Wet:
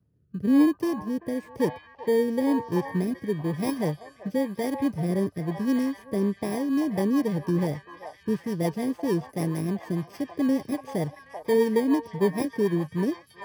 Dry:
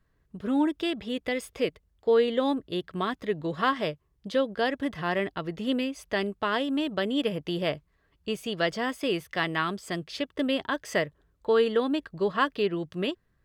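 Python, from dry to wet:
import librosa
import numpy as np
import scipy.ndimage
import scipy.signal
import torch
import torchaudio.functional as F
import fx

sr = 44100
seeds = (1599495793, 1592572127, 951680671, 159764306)

p1 = fx.bit_reversed(x, sr, seeds[0], block=32)
p2 = scipy.signal.sosfilt(scipy.signal.butter(4, 100.0, 'highpass', fs=sr, output='sos'), p1)
p3 = fx.tilt_eq(p2, sr, slope=-4.0)
p4 = p3 + fx.echo_stepped(p3, sr, ms=386, hz=950.0, octaves=0.7, feedback_pct=70, wet_db=-2.5, dry=0)
y = fx.rotary_switch(p4, sr, hz=1.0, then_hz=6.7, switch_at_s=6.22)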